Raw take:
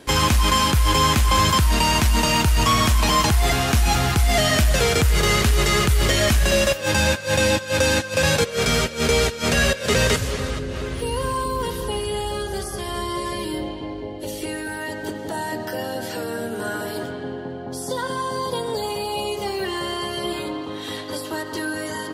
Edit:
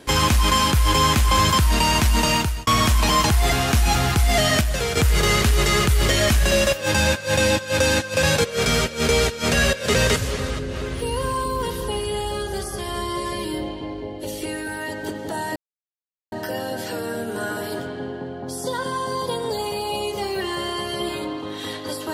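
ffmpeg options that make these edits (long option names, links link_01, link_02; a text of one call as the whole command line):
ffmpeg -i in.wav -filter_complex "[0:a]asplit=5[link_01][link_02][link_03][link_04][link_05];[link_01]atrim=end=2.67,asetpts=PTS-STARTPTS,afade=type=out:start_time=2.33:duration=0.34[link_06];[link_02]atrim=start=2.67:end=4.612,asetpts=PTS-STARTPTS,afade=type=in:duration=0.004:curve=hsin[link_07];[link_03]atrim=start=4.608:end=4.972,asetpts=PTS-STARTPTS,volume=-5dB[link_08];[link_04]atrim=start=4.968:end=15.56,asetpts=PTS-STARTPTS,afade=type=out:start_time=10.588:duration=0.004:curve=hsin,apad=pad_dur=0.76[link_09];[link_05]atrim=start=15.56,asetpts=PTS-STARTPTS,afade=type=in:duration=0.004:curve=hsin[link_10];[link_06][link_07]concat=n=2:v=0:a=1[link_11];[link_11][link_08]acrossfade=duration=0.004:curve1=hsin:curve2=hsin[link_12];[link_09][link_10]concat=n=2:v=0:a=1[link_13];[link_12][link_13]acrossfade=duration=0.004:curve1=hsin:curve2=hsin" out.wav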